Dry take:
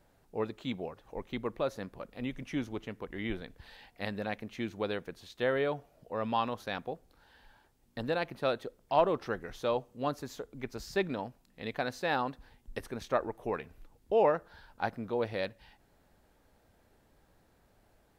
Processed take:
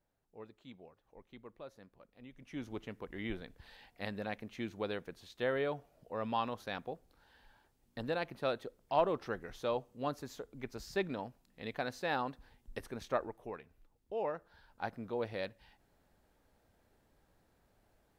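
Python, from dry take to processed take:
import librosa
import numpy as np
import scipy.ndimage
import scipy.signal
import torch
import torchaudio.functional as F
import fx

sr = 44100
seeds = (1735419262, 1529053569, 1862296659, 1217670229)

y = fx.gain(x, sr, db=fx.line((2.3, -17.0), (2.72, -4.0), (13.15, -4.0), (13.62, -12.0), (14.14, -12.0), (15.0, -5.0)))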